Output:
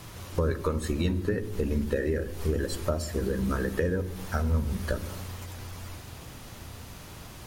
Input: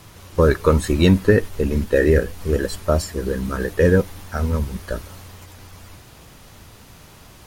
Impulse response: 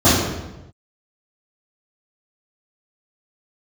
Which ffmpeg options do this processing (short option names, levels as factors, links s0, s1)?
-filter_complex "[0:a]acompressor=threshold=0.0562:ratio=10,asplit=2[s0][s1];[1:a]atrim=start_sample=2205,adelay=10[s2];[s1][s2]afir=irnorm=-1:irlink=0,volume=0.0112[s3];[s0][s3]amix=inputs=2:normalize=0"